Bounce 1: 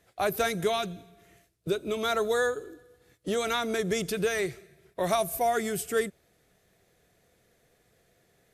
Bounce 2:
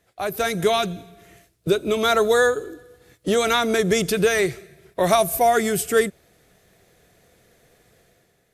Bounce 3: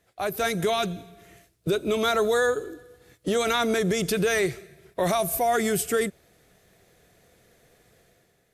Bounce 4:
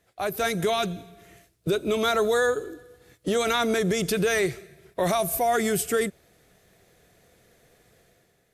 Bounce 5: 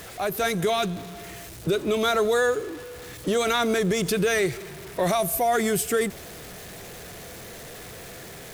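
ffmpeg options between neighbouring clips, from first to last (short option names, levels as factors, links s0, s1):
-af "dynaudnorm=f=110:g=9:m=2.82"
-af "alimiter=limit=0.224:level=0:latency=1:release=23,volume=0.794"
-af anull
-af "aeval=exprs='val(0)+0.5*0.0168*sgn(val(0))':c=same"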